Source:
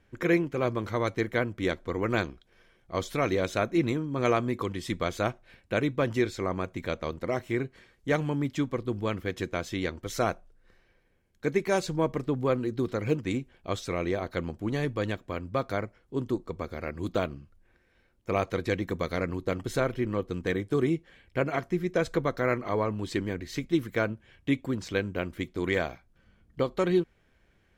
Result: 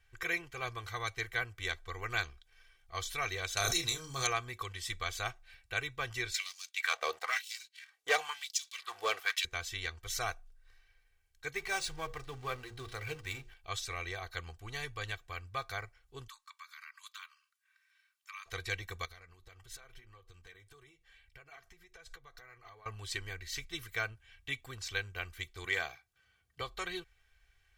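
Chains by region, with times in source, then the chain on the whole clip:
3.57–4.27 resonant high shelf 3500 Hz +11.5 dB, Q 1.5 + doubler 30 ms -5.5 dB + backwards sustainer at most 24 dB/s
6.34–9.45 sample leveller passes 2 + LFO high-pass sine 1 Hz 480–5600 Hz
11.55–13.54 G.711 law mismatch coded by mu + notches 60/120/180/240/300/360/420/480/540 Hz + decimation joined by straight lines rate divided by 3×
16.28–18.46 steep high-pass 940 Hz 96 dB/oct + compressor 3:1, threshold -43 dBFS
19.05–22.86 compressor 10:1, threshold -37 dBFS + flange 1.7 Hz, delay 1.7 ms, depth 3.5 ms, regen -58%
25.65–26.61 HPF 190 Hz + low shelf 280 Hz +7 dB
whole clip: passive tone stack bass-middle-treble 10-0-10; comb 2.6 ms, depth 66%; gain +1 dB

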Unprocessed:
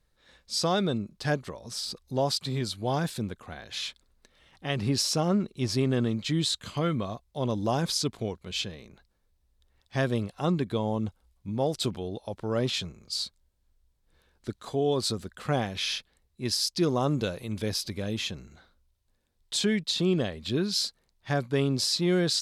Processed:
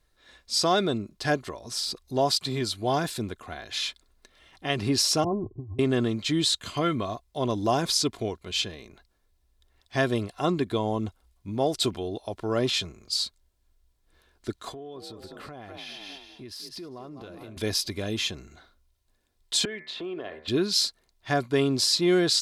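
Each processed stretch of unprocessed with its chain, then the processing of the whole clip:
5.24–5.79 resonant low shelf 150 Hz +11.5 dB, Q 3 + negative-ratio compressor -27 dBFS + rippled Chebyshev low-pass 1100 Hz, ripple 9 dB
14.72–17.57 bell 7200 Hz -11.5 dB 1.5 oct + frequency-shifting echo 0.2 s, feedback 36%, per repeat +45 Hz, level -11.5 dB + compressor 12:1, threshold -40 dBFS
19.65–20.48 three-band isolator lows -15 dB, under 340 Hz, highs -24 dB, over 2800 Hz + de-hum 75.67 Hz, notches 32 + compressor 5:1, threshold -35 dBFS
whole clip: low shelf 250 Hz -4 dB; comb 2.9 ms, depth 38%; gain +3.5 dB

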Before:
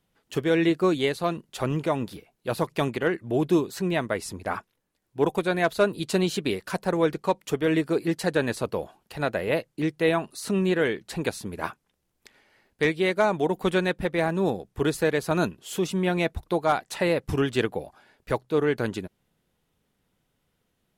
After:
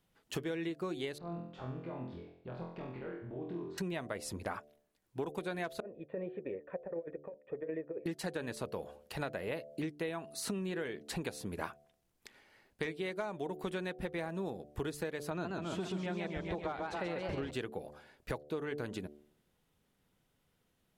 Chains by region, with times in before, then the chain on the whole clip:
1.18–3.78 compressor 4:1, threshold -40 dBFS + tape spacing loss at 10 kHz 42 dB + flutter echo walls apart 4 m, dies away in 0.65 s
5.8–8.06 vocal tract filter e + resonant high shelf 1500 Hz -6.5 dB, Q 1.5 + negative-ratio compressor -33 dBFS, ratio -0.5
15.3–17.51 air absorption 96 m + warbling echo 0.138 s, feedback 65%, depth 183 cents, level -4 dB
whole clip: de-hum 73.63 Hz, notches 10; compressor 12:1, threshold -32 dBFS; gain -2.5 dB

